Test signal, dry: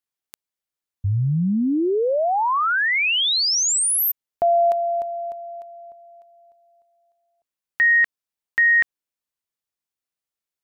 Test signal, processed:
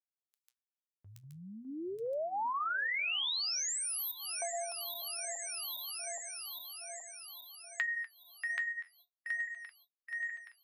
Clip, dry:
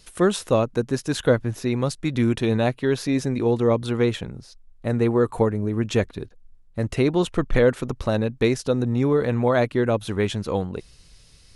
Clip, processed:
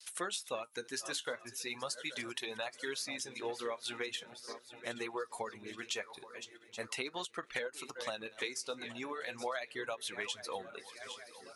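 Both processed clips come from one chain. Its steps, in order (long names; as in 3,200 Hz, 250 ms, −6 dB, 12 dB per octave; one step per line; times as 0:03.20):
feedback delay that plays each chunk backwards 412 ms, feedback 74%, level −13.5 dB
high-pass filter 1,200 Hz 6 dB per octave
noise gate with hold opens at −48 dBFS, hold 114 ms, range −34 dB
spectral tilt +2.5 dB per octave
downward compressor 8 to 1, threshold −29 dBFS
high-shelf EQ 8,100 Hz −5.5 dB
reverb reduction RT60 1.6 s
flanger 0.4 Hz, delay 5 ms, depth 7.6 ms, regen −58%
every ending faded ahead of time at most 490 dB per second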